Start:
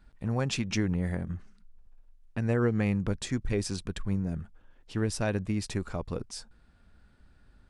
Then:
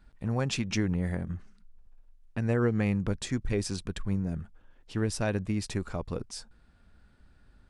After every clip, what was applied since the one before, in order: nothing audible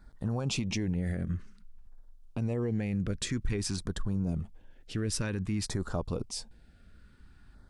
limiter -25.5 dBFS, peak gain reduction 10.5 dB; LFO notch saw down 0.53 Hz 470–2900 Hz; gain +3.5 dB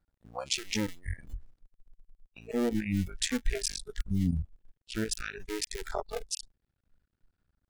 cycle switcher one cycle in 2, muted; spectral noise reduction 25 dB; gain +6 dB

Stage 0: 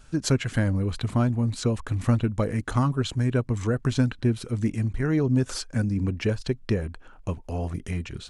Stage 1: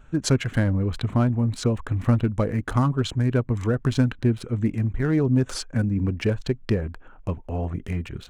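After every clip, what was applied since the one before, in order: Wiener smoothing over 9 samples; gain +2 dB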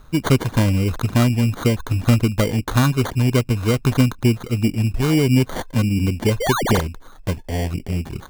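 painted sound rise, 6.4–6.81, 420–9400 Hz -26 dBFS; sample-and-hold 17×; gain +4.5 dB

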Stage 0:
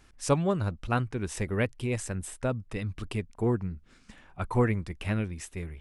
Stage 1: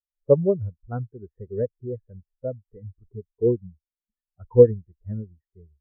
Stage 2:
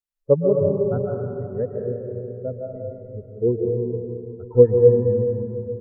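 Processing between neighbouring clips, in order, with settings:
elliptic low-pass 1900 Hz; bell 460 Hz +5.5 dB 0.67 oct; spectral expander 2.5:1; gain +9 dB
digital reverb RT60 2.8 s, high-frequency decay 0.35×, pre-delay 0.1 s, DRR 0 dB

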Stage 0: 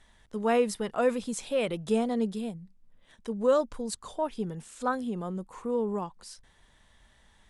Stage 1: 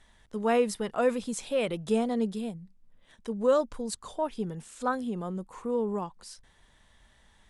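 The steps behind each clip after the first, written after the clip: nothing audible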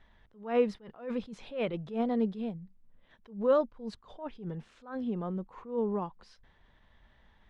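air absorption 270 m; attack slew limiter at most 150 dB/s

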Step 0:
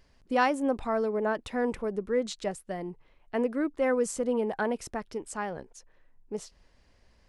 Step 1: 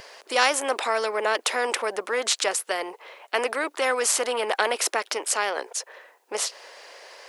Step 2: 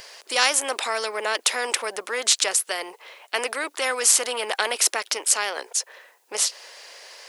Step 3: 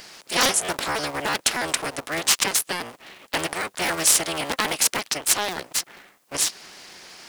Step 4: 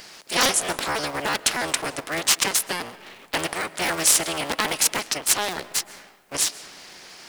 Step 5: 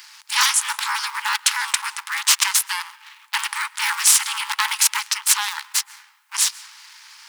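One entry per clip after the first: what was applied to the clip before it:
steep high-pass 440 Hz 36 dB/oct; spectral compressor 2:1; gain +6 dB
high shelf 2300 Hz +11 dB; gain -4 dB
cycle switcher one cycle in 3, inverted
reverb RT60 1.8 s, pre-delay 95 ms, DRR 17 dB
sample leveller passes 1; brick-wall FIR high-pass 820 Hz

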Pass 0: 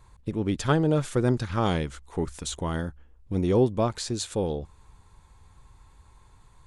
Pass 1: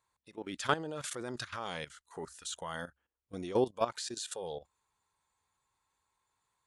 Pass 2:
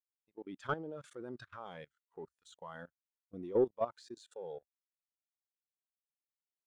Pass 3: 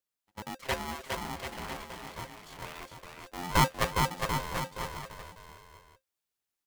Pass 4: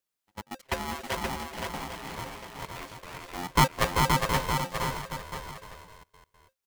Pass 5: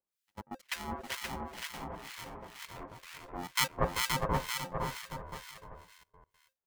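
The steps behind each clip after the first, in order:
spectral noise reduction 11 dB; HPF 870 Hz 6 dB/oct; level quantiser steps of 14 dB; gain +2.5 dB
high shelf 3700 Hz -8 dB; sample leveller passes 2; spectral expander 1.5:1; gain -7 dB
minimum comb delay 0.5 ms; on a send: bouncing-ball echo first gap 0.41 s, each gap 0.8×, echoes 5; on the sum: polarity switched at an audio rate 530 Hz; gain +6.5 dB
step gate "xxxx.x.xxx" 147 bpm -24 dB; echo 0.523 s -4 dB; gain +3 dB
harmonic tremolo 2.1 Hz, depth 100%, crossover 1400 Hz; gain -1 dB

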